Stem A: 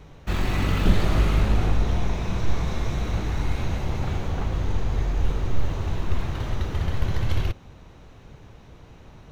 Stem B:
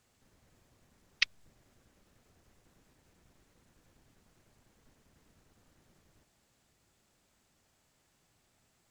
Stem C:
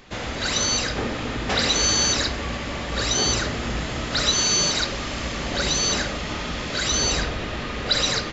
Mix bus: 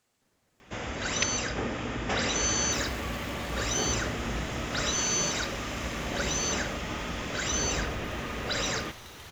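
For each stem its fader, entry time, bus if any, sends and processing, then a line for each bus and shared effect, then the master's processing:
−7.0 dB, 2.45 s, no send, spectral tilt +4 dB per octave; downward compressor, threshold −30 dBFS, peak gain reduction 7.5 dB; soft clipping −34 dBFS, distortion −12 dB
−2.0 dB, 0.00 s, no send, low-shelf EQ 120 Hz −12 dB
−5.0 dB, 0.60 s, no send, high-pass filter 42 Hz; parametric band 4,200 Hz −12 dB 0.32 octaves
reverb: not used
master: no processing

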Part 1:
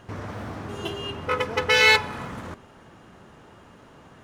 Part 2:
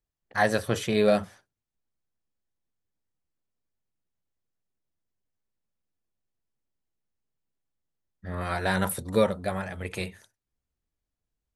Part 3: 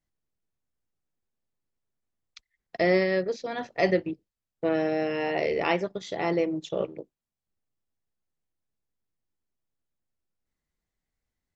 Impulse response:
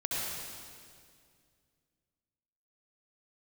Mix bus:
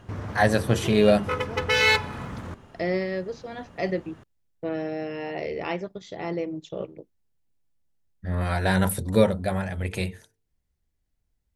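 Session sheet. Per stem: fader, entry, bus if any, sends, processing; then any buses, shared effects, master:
−3.5 dB, 0.00 s, no send, no processing
+2.0 dB, 0.00 s, no send, parametric band 1,200 Hz −5.5 dB 0.28 octaves; mains-hum notches 50/100/150/200/250/300/350/400/450 Hz
−5.5 dB, 0.00 s, no send, no processing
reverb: not used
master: low-shelf EQ 180 Hz +9 dB

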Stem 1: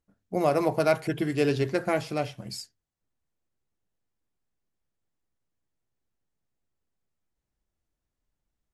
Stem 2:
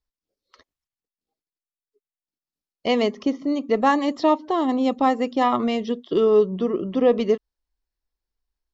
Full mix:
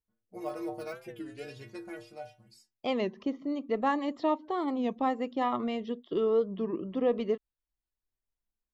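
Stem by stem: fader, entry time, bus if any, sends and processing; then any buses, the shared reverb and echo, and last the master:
−3.0 dB, 0.00 s, no send, de-essing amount 70%; stiff-string resonator 110 Hz, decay 0.39 s, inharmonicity 0.008; automatic ducking −8 dB, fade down 1.20 s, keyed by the second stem
−9.5 dB, 0.00 s, no send, parametric band 5,700 Hz −10 dB 0.66 octaves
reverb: not used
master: wow of a warped record 33 1/3 rpm, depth 160 cents

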